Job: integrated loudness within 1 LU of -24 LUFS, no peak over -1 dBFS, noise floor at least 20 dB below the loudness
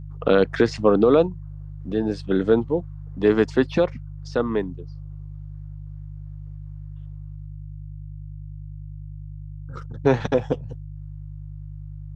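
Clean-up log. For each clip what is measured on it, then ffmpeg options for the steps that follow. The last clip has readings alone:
hum 50 Hz; harmonics up to 150 Hz; hum level -34 dBFS; loudness -21.5 LUFS; peak -4.5 dBFS; loudness target -24.0 LUFS
-> -af "bandreject=f=50:t=h:w=4,bandreject=f=100:t=h:w=4,bandreject=f=150:t=h:w=4"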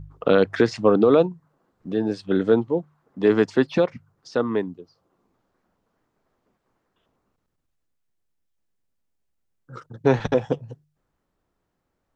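hum none; loudness -22.0 LUFS; peak -5.0 dBFS; loudness target -24.0 LUFS
-> -af "volume=-2dB"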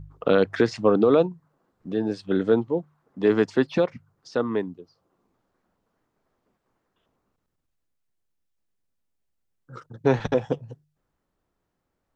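loudness -24.0 LUFS; peak -7.0 dBFS; noise floor -78 dBFS

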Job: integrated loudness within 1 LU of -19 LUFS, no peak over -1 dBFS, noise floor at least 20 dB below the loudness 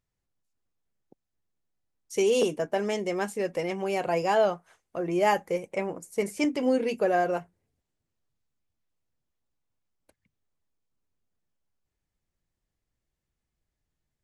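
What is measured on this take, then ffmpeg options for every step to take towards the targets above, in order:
loudness -27.5 LUFS; peak -12.0 dBFS; loudness target -19.0 LUFS
-> -af "volume=8.5dB"

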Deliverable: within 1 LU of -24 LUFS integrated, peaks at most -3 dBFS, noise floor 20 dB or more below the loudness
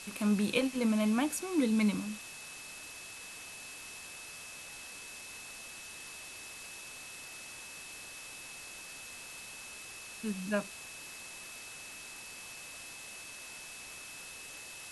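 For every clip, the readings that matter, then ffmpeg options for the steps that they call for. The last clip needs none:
steady tone 2600 Hz; tone level -49 dBFS; noise floor -48 dBFS; noise floor target -58 dBFS; loudness -38.0 LUFS; peak -16.0 dBFS; loudness target -24.0 LUFS
-> -af "bandreject=f=2.6k:w=30"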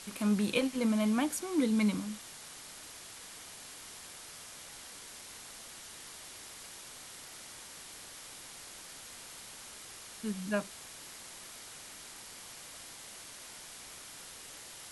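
steady tone none; noise floor -49 dBFS; noise floor target -58 dBFS
-> -af "afftdn=nr=9:nf=-49"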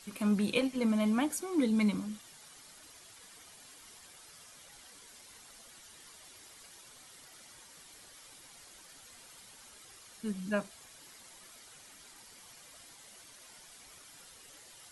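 noise floor -56 dBFS; loudness -32.0 LUFS; peak -16.5 dBFS; loudness target -24.0 LUFS
-> -af "volume=8dB"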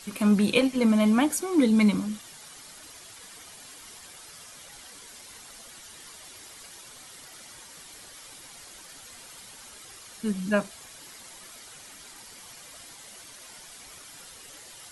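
loudness -24.0 LUFS; peak -8.5 dBFS; noise floor -48 dBFS

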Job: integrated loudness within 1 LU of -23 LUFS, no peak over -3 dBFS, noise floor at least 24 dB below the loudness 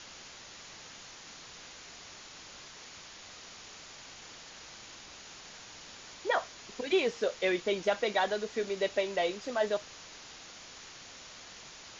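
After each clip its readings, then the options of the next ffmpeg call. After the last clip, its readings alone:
noise floor -50 dBFS; noise floor target -56 dBFS; loudness -31.5 LUFS; peak -15.5 dBFS; loudness target -23.0 LUFS
-> -af "afftdn=nr=6:nf=-50"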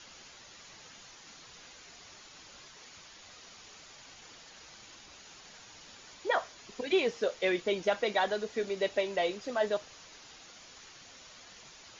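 noise floor -53 dBFS; noise floor target -56 dBFS
-> -af "afftdn=nr=6:nf=-53"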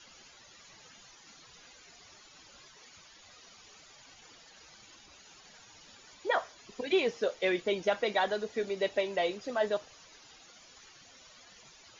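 noise floor -57 dBFS; loudness -31.5 LUFS; peak -15.5 dBFS; loudness target -23.0 LUFS
-> -af "volume=8.5dB"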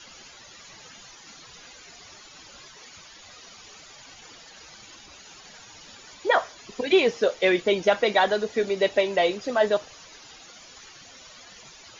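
loudness -23.0 LUFS; peak -7.0 dBFS; noise floor -48 dBFS

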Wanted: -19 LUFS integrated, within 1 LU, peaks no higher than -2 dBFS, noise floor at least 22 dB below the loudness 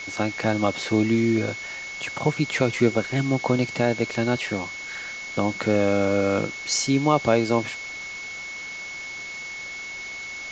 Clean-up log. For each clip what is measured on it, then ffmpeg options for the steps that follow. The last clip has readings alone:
steady tone 2200 Hz; tone level -33 dBFS; noise floor -35 dBFS; noise floor target -47 dBFS; loudness -24.5 LUFS; peak -5.0 dBFS; loudness target -19.0 LUFS
-> -af "bandreject=f=2.2k:w=30"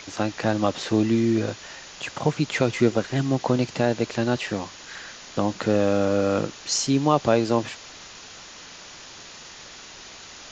steady tone none; noise floor -43 dBFS; noise floor target -46 dBFS
-> -af "afftdn=nr=6:nf=-43"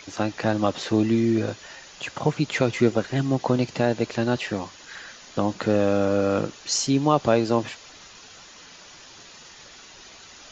noise floor -47 dBFS; loudness -23.5 LUFS; peak -5.5 dBFS; loudness target -19.0 LUFS
-> -af "volume=4.5dB,alimiter=limit=-2dB:level=0:latency=1"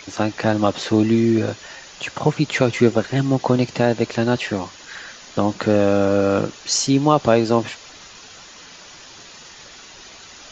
loudness -19.0 LUFS; peak -2.0 dBFS; noise floor -42 dBFS

